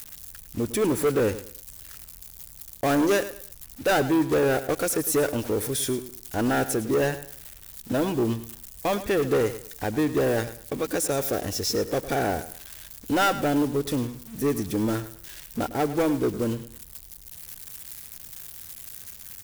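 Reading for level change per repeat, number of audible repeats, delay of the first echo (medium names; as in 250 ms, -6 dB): -11.0 dB, 2, 105 ms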